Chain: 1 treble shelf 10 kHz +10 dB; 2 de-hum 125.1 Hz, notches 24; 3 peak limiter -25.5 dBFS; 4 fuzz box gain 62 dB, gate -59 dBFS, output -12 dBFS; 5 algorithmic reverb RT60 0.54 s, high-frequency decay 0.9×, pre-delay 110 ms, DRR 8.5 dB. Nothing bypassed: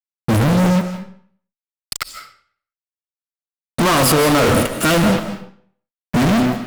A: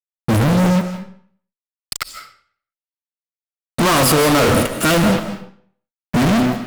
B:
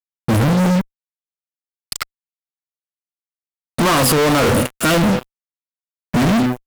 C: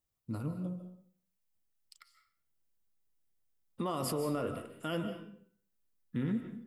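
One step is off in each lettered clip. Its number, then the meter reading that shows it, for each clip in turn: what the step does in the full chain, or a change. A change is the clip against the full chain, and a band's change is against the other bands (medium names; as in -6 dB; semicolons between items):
3, mean gain reduction 2.5 dB; 5, crest factor change -2.5 dB; 4, distortion -2 dB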